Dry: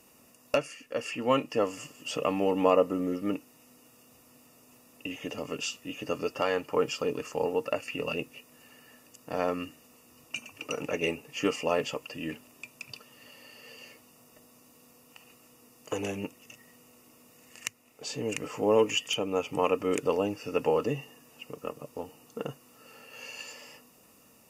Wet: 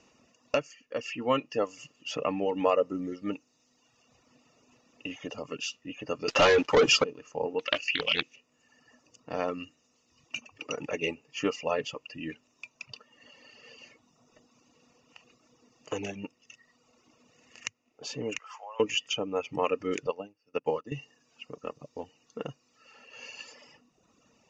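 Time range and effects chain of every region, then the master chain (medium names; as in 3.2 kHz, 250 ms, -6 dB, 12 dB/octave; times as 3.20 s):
6.28–7.04 s: high-pass 250 Hz 6 dB/octave + waveshaping leveller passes 5
7.59–8.36 s: frequency weighting D + loudspeaker Doppler distortion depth 0.37 ms
18.38–18.80 s: high-pass 790 Hz 24 dB/octave + compression 8:1, threshold -36 dBFS
20.07–20.92 s: high-pass 90 Hz + upward expansion 2.5:1, over -37 dBFS
whole clip: elliptic low-pass 6.6 kHz, stop band 40 dB; reverb removal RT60 1.3 s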